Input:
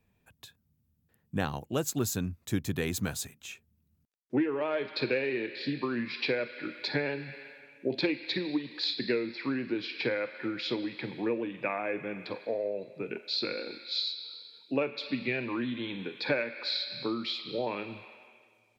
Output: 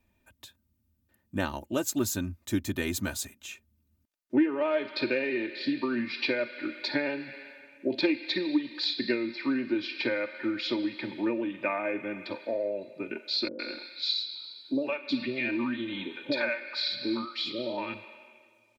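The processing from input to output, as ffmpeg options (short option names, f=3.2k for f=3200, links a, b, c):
-filter_complex "[0:a]asettb=1/sr,asplit=3[a][b][c];[a]atrim=end=13.484[d];[b]atrim=start=13.48:end=17.94,asetpts=PTS-STARTPTS,afade=t=in:d=0.004:c=qsin,afade=t=out:st=4.456:d=0.004:c=qsin,acrossover=split=560[e][f];[f]adelay=110[g];[e][g]amix=inputs=2:normalize=0,atrim=end_sample=196686[h];[c]atrim=start=17.936[i];[d][h]acrossfade=d=0.004:c1=hsin:c2=qsin[j];[j][i]acrossfade=d=0.004:c1=qsin:c2=hsin,aecho=1:1:3.3:0.73"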